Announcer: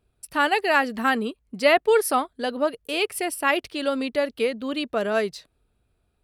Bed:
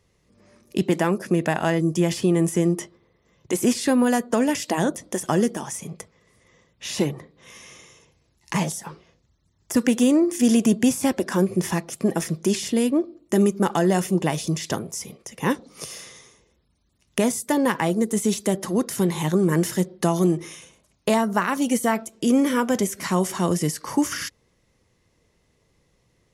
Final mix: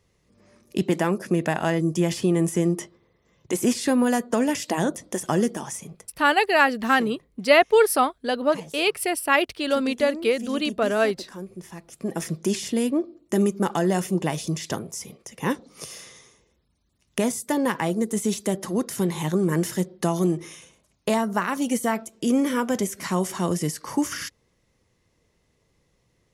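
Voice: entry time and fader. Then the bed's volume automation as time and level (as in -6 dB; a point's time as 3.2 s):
5.85 s, +2.0 dB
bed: 5.76 s -1.5 dB
6.2 s -16.5 dB
11.73 s -16.5 dB
12.25 s -2.5 dB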